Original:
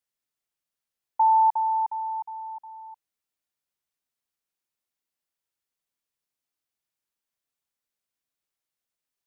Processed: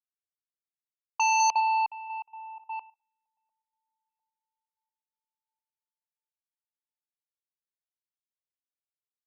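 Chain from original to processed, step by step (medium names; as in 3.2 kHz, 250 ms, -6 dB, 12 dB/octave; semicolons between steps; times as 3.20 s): backward echo that repeats 699 ms, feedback 42%, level -13 dB; Chebyshev shaper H 3 -27 dB, 5 -10 dB, 7 -9 dB, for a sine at -14 dBFS; level-controlled noise filter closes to 770 Hz, open at -23.5 dBFS; trim -3 dB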